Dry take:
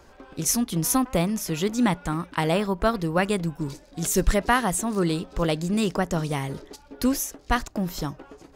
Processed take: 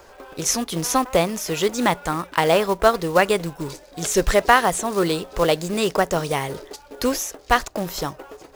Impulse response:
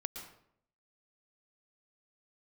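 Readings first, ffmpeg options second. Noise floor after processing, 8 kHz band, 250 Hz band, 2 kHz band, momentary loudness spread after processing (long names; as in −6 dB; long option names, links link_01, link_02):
−48 dBFS, +2.5 dB, −1.5 dB, +6.5 dB, 13 LU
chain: -filter_complex "[0:a]lowshelf=frequency=340:width_type=q:width=1.5:gain=-7,acrusher=bits=4:mode=log:mix=0:aa=0.000001,acrossover=split=7200[link_01][link_02];[link_02]acompressor=threshold=-37dB:ratio=4:attack=1:release=60[link_03];[link_01][link_03]amix=inputs=2:normalize=0,volume=6dB"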